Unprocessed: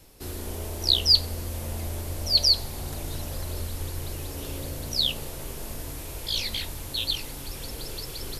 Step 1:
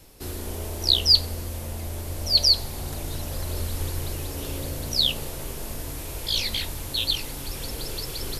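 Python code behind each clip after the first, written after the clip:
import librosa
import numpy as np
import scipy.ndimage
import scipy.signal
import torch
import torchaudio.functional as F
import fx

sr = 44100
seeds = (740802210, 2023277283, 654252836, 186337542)

y = fx.rider(x, sr, range_db=4, speed_s=2.0)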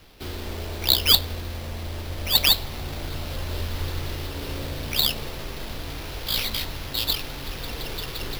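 y = fx.sample_hold(x, sr, seeds[0], rate_hz=8100.0, jitter_pct=0)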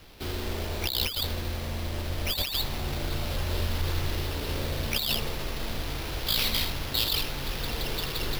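y = x + 10.0 ** (-8.0 / 20.0) * np.pad(x, (int(80 * sr / 1000.0), 0))[:len(x)]
y = fx.over_compress(y, sr, threshold_db=-25.0, ratio=-1.0)
y = F.gain(torch.from_numpy(y), -1.5).numpy()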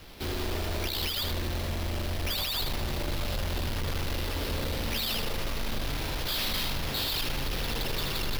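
y = np.clip(x, -10.0 ** (-31.5 / 20.0), 10.0 ** (-31.5 / 20.0))
y = y + 10.0 ** (-7.0 / 20.0) * np.pad(y, (int(75 * sr / 1000.0), 0))[:len(y)]
y = F.gain(torch.from_numpy(y), 2.5).numpy()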